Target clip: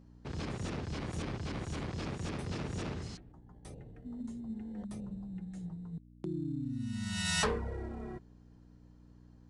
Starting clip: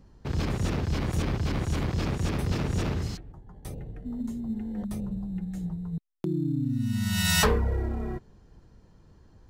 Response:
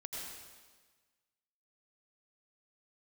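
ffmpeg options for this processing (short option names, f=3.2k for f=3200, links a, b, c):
-af "aresample=22050,aresample=44100,aeval=exprs='val(0)+0.00631*(sin(2*PI*60*n/s)+sin(2*PI*2*60*n/s)/2+sin(2*PI*3*60*n/s)/3+sin(2*PI*4*60*n/s)/4+sin(2*PI*5*60*n/s)/5)':c=same,lowshelf=f=84:g=-10,volume=-7.5dB"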